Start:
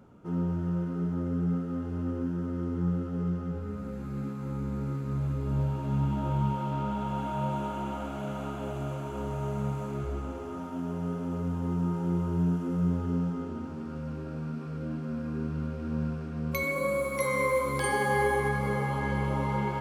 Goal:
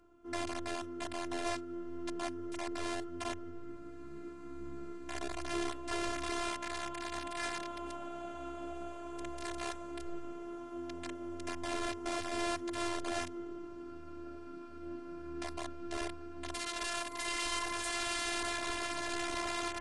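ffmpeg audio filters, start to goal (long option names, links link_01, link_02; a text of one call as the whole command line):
ffmpeg -i in.wav -af "aeval=exprs='(mod(15.8*val(0)+1,2)-1)/15.8':channel_layout=same,afftfilt=real='hypot(re,im)*cos(PI*b)':imag='0':win_size=512:overlap=0.75,volume=-3dB" -ar 22050 -c:a aac -b:a 48k out.aac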